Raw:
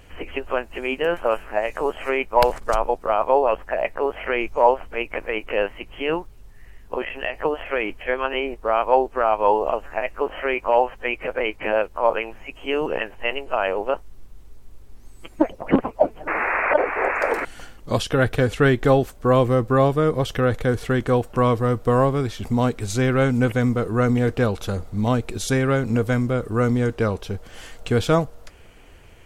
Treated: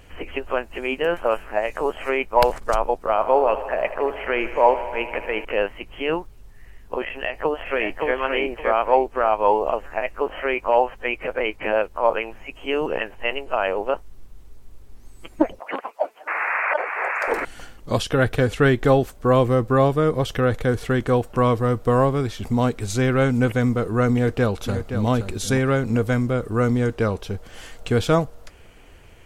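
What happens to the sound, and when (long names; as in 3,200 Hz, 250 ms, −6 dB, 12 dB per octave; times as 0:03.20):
0:03.04–0:05.45: feedback echo with a high-pass in the loop 78 ms, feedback 82%, high-pass 190 Hz, level −14 dB
0:07.09–0:08.15: delay throw 570 ms, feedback 20%, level −3 dB
0:15.59–0:17.28: high-pass filter 820 Hz
0:24.14–0:25.06: delay throw 520 ms, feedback 15%, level −9 dB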